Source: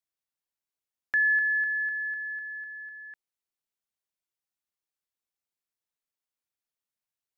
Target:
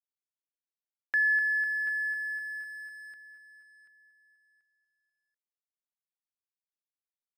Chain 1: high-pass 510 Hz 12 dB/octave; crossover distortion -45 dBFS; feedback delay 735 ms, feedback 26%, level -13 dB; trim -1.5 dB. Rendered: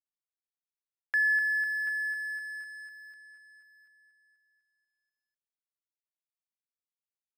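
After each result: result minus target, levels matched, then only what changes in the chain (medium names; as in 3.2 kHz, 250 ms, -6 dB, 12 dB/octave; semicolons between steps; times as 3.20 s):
250 Hz band -8.5 dB; crossover distortion: distortion +7 dB
change: high-pass 200 Hz 12 dB/octave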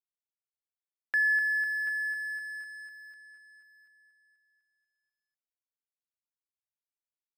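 crossover distortion: distortion +6 dB
change: crossover distortion -51.5 dBFS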